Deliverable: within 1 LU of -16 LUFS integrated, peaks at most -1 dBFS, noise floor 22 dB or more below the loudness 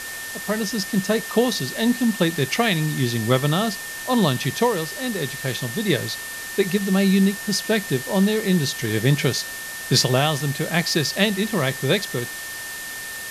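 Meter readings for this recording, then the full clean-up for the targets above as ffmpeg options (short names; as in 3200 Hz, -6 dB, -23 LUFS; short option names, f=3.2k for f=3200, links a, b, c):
steady tone 1800 Hz; tone level -33 dBFS; noise floor -33 dBFS; noise floor target -44 dBFS; loudness -22.0 LUFS; peak -4.0 dBFS; loudness target -16.0 LUFS
-> -af "bandreject=f=1.8k:w=30"
-af "afftdn=nr=11:nf=-33"
-af "volume=6dB,alimiter=limit=-1dB:level=0:latency=1"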